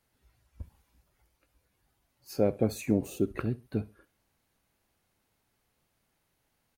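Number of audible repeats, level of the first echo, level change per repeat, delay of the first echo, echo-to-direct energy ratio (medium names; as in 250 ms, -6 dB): 2, -20.0 dB, -11.5 dB, 67 ms, -19.5 dB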